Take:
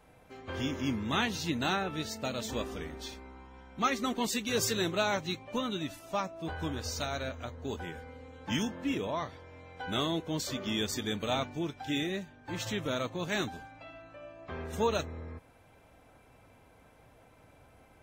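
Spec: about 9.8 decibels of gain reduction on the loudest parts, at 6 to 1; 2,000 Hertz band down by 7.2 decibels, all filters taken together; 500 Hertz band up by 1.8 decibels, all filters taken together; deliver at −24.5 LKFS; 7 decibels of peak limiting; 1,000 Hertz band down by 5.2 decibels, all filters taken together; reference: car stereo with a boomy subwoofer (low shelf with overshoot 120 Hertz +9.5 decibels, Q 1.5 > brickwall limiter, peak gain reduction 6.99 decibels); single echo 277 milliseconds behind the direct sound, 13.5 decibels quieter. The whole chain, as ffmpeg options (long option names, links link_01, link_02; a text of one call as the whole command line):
ffmpeg -i in.wav -af "equalizer=frequency=500:width_type=o:gain=5,equalizer=frequency=1000:width_type=o:gain=-6.5,equalizer=frequency=2000:width_type=o:gain=-8,acompressor=threshold=-33dB:ratio=6,alimiter=level_in=7dB:limit=-24dB:level=0:latency=1,volume=-7dB,lowshelf=frequency=120:width_type=q:width=1.5:gain=9.5,aecho=1:1:277:0.211,volume=16.5dB,alimiter=limit=-14.5dB:level=0:latency=1" out.wav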